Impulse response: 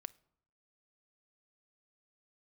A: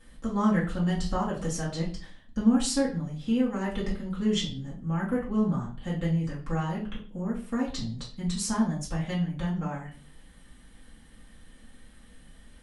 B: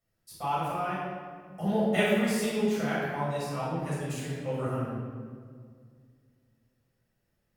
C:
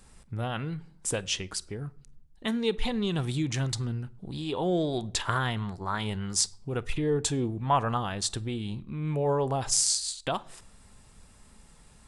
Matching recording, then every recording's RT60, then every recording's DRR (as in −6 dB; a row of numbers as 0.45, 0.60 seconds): C; 0.40, 2.0, 0.70 seconds; −7.5, −9.5, 19.5 decibels